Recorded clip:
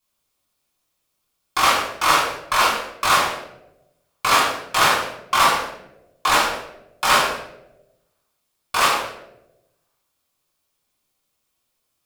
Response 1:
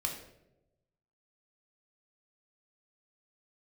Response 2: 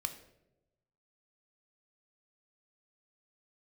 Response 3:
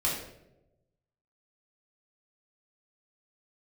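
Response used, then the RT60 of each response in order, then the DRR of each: 3; 0.90, 0.95, 0.90 s; 0.5, 6.5, -6.0 dB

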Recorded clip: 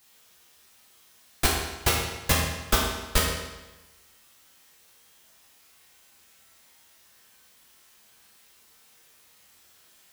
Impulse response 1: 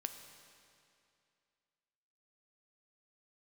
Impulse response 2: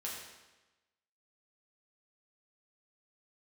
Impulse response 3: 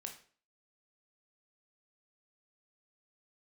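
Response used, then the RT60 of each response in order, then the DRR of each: 2; 2.5, 1.1, 0.45 s; 6.5, -5.0, 3.0 dB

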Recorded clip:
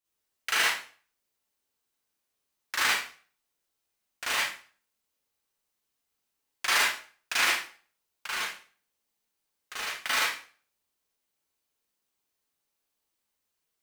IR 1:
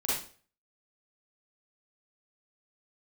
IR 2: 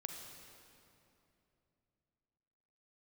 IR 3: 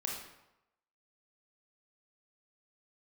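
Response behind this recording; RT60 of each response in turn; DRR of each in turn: 1; 0.45, 2.9, 0.90 s; -8.0, 3.0, -1.5 dB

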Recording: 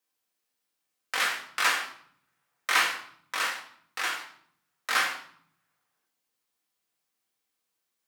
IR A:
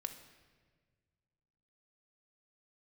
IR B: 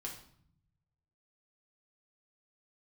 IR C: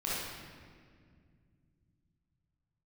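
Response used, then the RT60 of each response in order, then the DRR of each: B; 1.5, 0.60, 2.0 s; 5.0, -2.5, -8.5 dB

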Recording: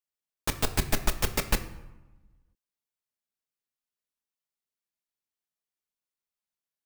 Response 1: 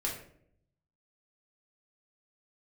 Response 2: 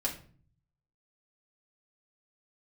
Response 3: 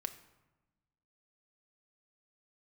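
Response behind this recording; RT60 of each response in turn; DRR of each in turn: 3; 0.65, 0.45, 1.1 s; -3.5, -3.5, 7.0 dB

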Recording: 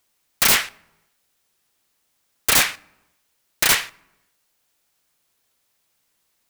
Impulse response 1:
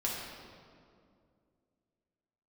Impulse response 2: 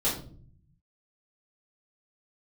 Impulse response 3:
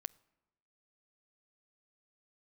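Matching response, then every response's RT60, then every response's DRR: 3; 2.3, 0.50, 1.0 s; -5.0, -9.0, 19.5 dB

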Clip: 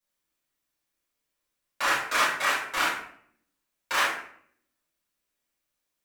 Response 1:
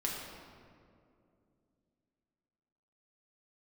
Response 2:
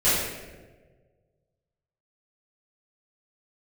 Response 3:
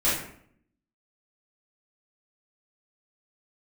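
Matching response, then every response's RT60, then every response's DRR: 3; 2.5, 1.5, 0.65 s; -3.0, -14.0, -11.5 dB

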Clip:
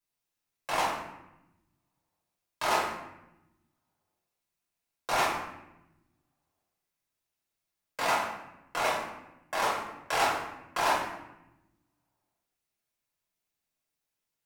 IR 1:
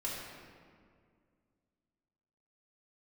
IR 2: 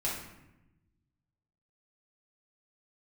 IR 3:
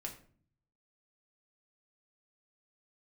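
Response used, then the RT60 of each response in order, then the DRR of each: 2; 2.1, 0.90, 0.50 s; -6.0, -6.5, 0.5 dB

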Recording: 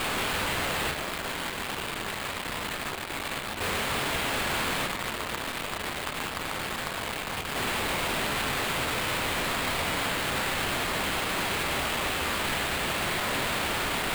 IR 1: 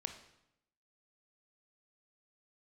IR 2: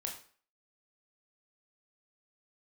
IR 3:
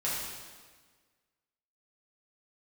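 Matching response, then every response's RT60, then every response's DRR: 1; 0.80, 0.45, 1.5 s; 6.0, 0.5, -8.5 dB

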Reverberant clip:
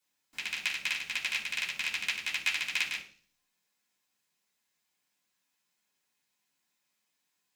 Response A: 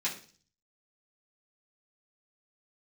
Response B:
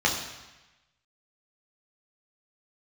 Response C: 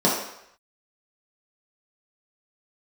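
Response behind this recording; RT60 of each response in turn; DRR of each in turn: A; 0.40, 1.1, 0.75 s; -8.5, -2.0, -6.5 dB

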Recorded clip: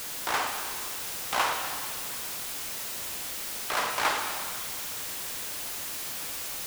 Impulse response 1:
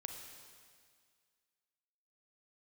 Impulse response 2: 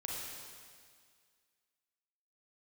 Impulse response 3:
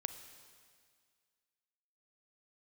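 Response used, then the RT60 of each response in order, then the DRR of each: 1; 1.9, 1.9, 2.0 s; 3.5, -3.5, 9.5 dB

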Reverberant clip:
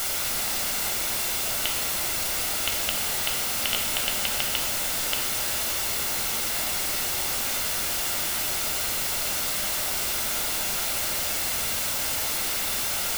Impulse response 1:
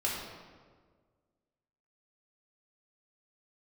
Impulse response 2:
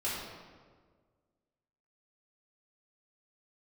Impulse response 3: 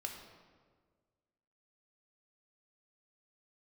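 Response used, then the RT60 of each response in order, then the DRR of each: 3; 1.6, 1.6, 1.6 s; -5.0, -9.0, 1.5 dB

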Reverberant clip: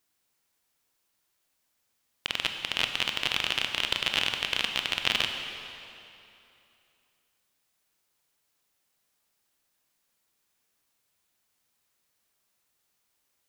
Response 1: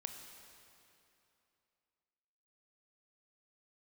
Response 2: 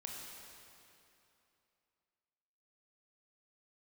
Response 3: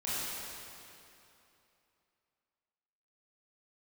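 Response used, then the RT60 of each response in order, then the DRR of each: 1; 2.8, 2.8, 2.9 s; 4.5, -1.5, -11.0 dB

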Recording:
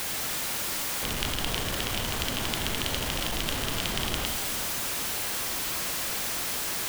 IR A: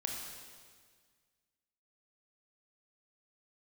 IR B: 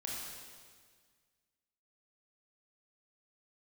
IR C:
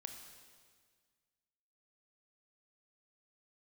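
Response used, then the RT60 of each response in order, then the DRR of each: C; 1.7, 1.7, 1.7 s; 0.0, -4.0, 4.5 dB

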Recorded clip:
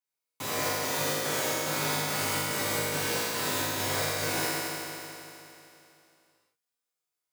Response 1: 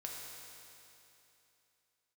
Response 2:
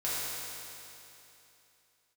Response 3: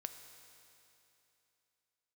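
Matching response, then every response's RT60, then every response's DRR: 2; 3.0, 2.9, 3.0 s; -2.5, -10.0, 7.0 dB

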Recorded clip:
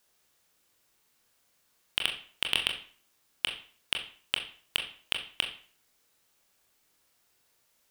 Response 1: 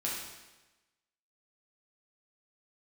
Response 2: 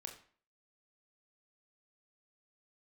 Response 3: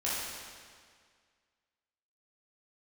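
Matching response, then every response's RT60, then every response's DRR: 2; 1.1, 0.45, 1.9 s; -5.5, 2.5, -9.0 dB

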